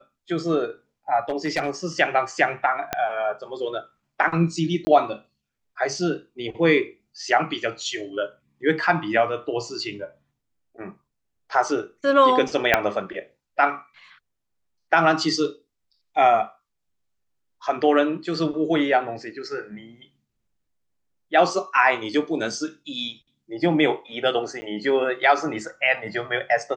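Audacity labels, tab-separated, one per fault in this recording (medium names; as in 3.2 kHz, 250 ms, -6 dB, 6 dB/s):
1.290000	1.700000	clipped -18 dBFS
2.930000	2.930000	pop -8 dBFS
4.850000	4.870000	dropout 20 ms
12.740000	12.740000	pop -2 dBFS
24.610000	24.620000	dropout 10 ms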